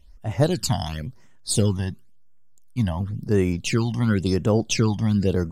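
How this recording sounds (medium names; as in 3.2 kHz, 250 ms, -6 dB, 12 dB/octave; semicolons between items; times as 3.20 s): phasing stages 12, 0.95 Hz, lowest notch 420–4400 Hz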